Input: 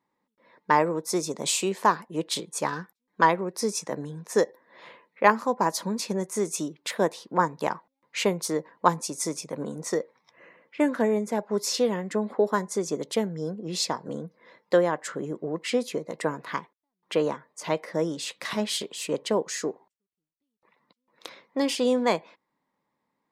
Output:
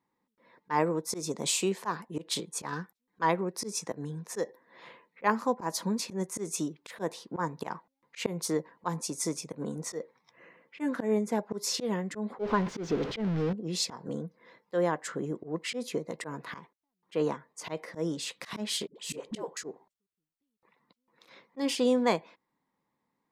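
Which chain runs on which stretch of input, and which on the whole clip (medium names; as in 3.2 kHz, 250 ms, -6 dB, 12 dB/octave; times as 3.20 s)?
12.39–13.53 s: jump at every zero crossing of -27.5 dBFS + distance through air 220 m
18.87–19.57 s: compression 2.5:1, threshold -27 dBFS + phase dispersion highs, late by 85 ms, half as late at 410 Hz
whole clip: bass shelf 230 Hz +4.5 dB; band-stop 590 Hz, Q 12; slow attack 114 ms; trim -3 dB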